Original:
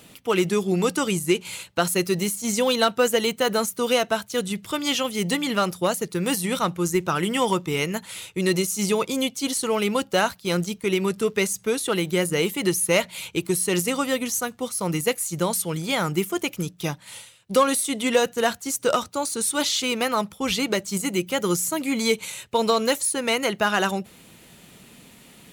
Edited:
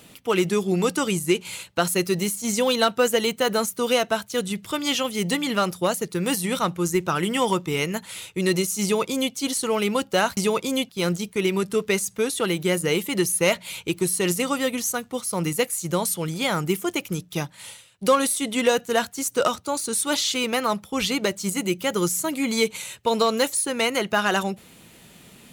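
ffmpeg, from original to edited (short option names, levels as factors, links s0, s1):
-filter_complex "[0:a]asplit=3[s0][s1][s2];[s0]atrim=end=10.372[s3];[s1]atrim=start=8.818:end=9.342[s4];[s2]atrim=start=10.368[s5];[s3][s4]acrossfade=d=0.004:c1=hsin:c2=hsin[s6];[s6][s5]acrossfade=d=0.004:c1=hsin:c2=hsin"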